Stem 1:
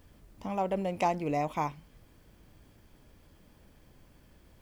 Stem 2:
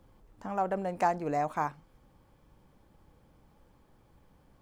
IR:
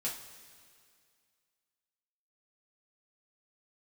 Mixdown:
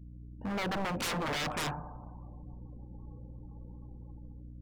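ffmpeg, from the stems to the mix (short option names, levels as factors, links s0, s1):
-filter_complex "[0:a]highshelf=f=3300:g=-9.5,alimiter=level_in=1.5:limit=0.0631:level=0:latency=1,volume=0.668,highpass=53,volume=0.794[s0];[1:a]highshelf=f=6800:g=-12,dynaudnorm=f=270:g=5:m=4.22,aeval=exprs='val(0)+0.00794*(sin(2*PI*60*n/s)+sin(2*PI*2*60*n/s)/2+sin(2*PI*3*60*n/s)/3+sin(2*PI*4*60*n/s)/4+sin(2*PI*5*60*n/s)/5)':c=same,volume=0.562,asplit=2[s1][s2];[s2]volume=0.224[s3];[2:a]atrim=start_sample=2205[s4];[s3][s4]afir=irnorm=-1:irlink=0[s5];[s0][s1][s5]amix=inputs=3:normalize=0,afftdn=nr=33:nf=-51,aeval=exprs='0.0376*(abs(mod(val(0)/0.0376+3,4)-2)-1)':c=same"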